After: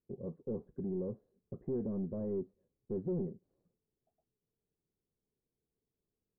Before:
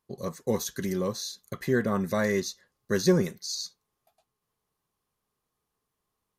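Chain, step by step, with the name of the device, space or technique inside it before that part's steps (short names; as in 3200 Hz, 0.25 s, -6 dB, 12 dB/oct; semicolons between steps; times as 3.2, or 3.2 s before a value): overdriven synthesiser ladder filter (soft clip -28.5 dBFS, distortion -6 dB; ladder low-pass 550 Hz, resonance 25%); gain +1.5 dB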